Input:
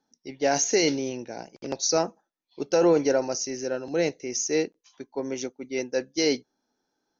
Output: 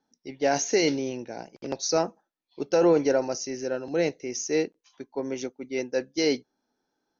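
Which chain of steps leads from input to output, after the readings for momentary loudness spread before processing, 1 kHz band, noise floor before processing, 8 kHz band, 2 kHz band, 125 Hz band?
14 LU, -0.5 dB, -80 dBFS, no reading, -0.5 dB, 0.0 dB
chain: distance through air 68 m

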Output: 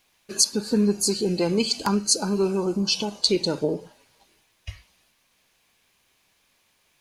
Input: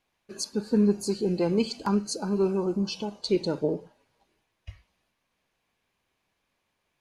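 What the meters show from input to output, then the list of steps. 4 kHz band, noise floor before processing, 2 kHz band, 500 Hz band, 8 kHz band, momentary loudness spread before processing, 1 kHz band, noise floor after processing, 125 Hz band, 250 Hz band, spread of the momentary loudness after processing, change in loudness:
+12.0 dB, -78 dBFS, +7.0 dB, +2.0 dB, +14.5 dB, 9 LU, +4.0 dB, -67 dBFS, +2.0 dB, +1.5 dB, 12 LU, +4.5 dB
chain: in parallel at +2.5 dB: compression, threshold -32 dBFS, peak gain reduction 14 dB; on the sum: treble shelf 2.6 kHz +12 dB; trim -1.5 dB

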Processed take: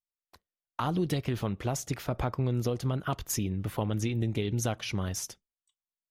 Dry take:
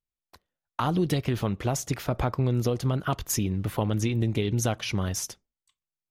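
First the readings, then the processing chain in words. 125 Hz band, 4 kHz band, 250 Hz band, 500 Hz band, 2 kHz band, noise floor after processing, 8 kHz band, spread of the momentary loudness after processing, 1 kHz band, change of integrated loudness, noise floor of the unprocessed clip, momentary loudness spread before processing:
-4.0 dB, -4.0 dB, -4.0 dB, -4.0 dB, -4.0 dB, under -85 dBFS, -4.0 dB, 5 LU, -4.0 dB, -4.0 dB, under -85 dBFS, 5 LU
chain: spectral noise reduction 11 dB; trim -4 dB

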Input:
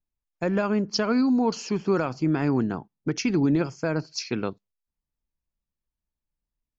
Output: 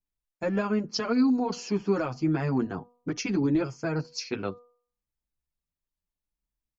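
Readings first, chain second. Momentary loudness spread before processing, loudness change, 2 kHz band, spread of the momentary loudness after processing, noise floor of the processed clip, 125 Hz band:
8 LU, -3.0 dB, -3.5 dB, 10 LU, under -85 dBFS, -3.0 dB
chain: de-hum 242.3 Hz, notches 5; endless flanger 7.8 ms +0.65 Hz

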